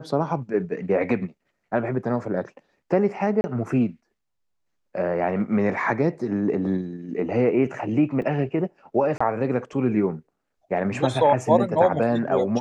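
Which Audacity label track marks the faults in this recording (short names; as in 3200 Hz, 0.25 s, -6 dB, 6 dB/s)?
3.410000	3.440000	gap 30 ms
8.220000	8.220000	gap 2.5 ms
9.180000	9.210000	gap 25 ms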